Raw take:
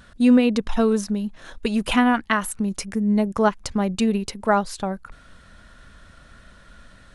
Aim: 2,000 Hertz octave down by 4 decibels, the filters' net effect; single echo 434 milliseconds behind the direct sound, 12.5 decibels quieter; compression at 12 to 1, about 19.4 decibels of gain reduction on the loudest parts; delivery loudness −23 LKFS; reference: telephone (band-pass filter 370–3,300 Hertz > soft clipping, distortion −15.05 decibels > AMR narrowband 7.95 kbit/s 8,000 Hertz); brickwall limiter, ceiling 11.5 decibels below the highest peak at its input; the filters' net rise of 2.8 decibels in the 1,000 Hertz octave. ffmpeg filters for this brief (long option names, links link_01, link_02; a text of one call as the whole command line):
ffmpeg -i in.wav -af "equalizer=frequency=1000:width_type=o:gain=5.5,equalizer=frequency=2000:width_type=o:gain=-7.5,acompressor=threshold=-31dB:ratio=12,alimiter=level_in=6dB:limit=-24dB:level=0:latency=1,volume=-6dB,highpass=370,lowpass=3300,aecho=1:1:434:0.237,asoftclip=threshold=-35dB,volume=24.5dB" -ar 8000 -c:a libopencore_amrnb -b:a 7950 out.amr